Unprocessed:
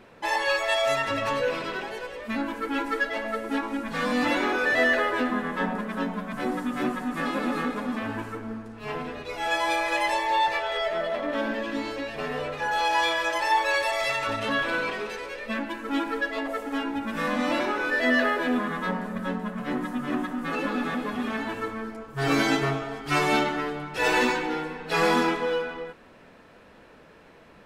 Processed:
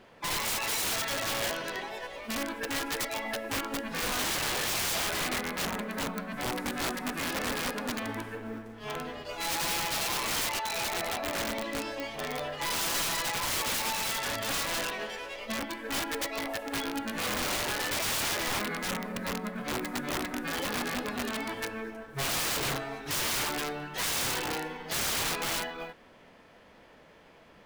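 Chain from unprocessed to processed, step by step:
floating-point word with a short mantissa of 4 bits
formants moved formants +3 semitones
wrap-around overflow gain 21.5 dB
level −4 dB

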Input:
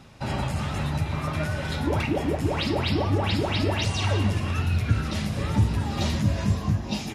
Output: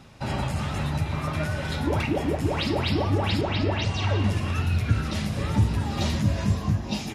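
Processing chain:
0:03.41–0:04.24: high-frequency loss of the air 100 metres

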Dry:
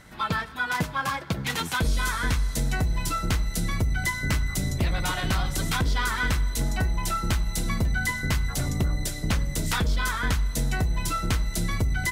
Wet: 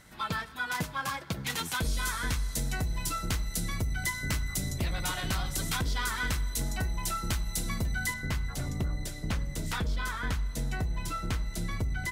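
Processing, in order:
high-shelf EQ 4,200 Hz +6.5 dB, from 0:08.14 −3.5 dB
level −6.5 dB

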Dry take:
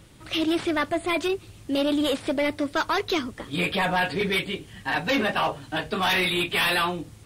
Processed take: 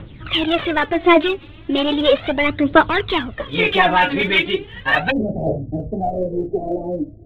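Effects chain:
Butterworth low-pass 3,700 Hz 72 dB per octave, from 0:05.10 690 Hz
phase shifter 0.36 Hz, delay 3.7 ms, feedback 66%
level +7 dB

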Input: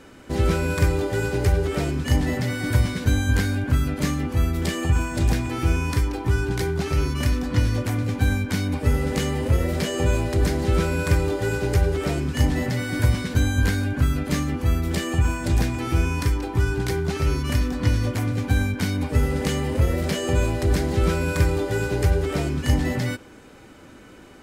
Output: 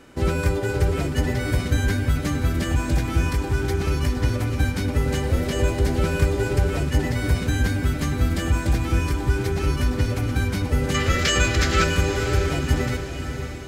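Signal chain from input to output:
gain on a spectral selection 0:19.54–0:21.15, 1,100–7,700 Hz +12 dB
phase-vocoder stretch with locked phases 0.56×
feedback delay with all-pass diffusion 578 ms, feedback 49%, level −8 dB

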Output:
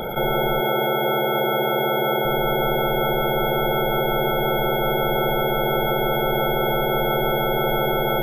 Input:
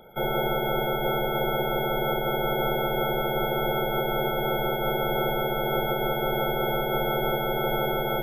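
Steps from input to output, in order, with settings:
0:00.61–0:02.25: high-pass filter 170 Hz 12 dB per octave
envelope flattener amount 70%
level +3.5 dB

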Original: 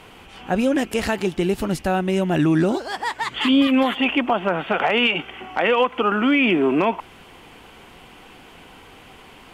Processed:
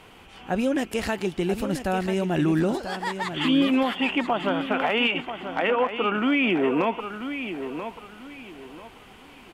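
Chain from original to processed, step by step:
0:05.70–0:06.15: low-pass filter 1,700 Hz
on a send: repeating echo 987 ms, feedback 28%, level −9.5 dB
on the sum: level −4.5 dB

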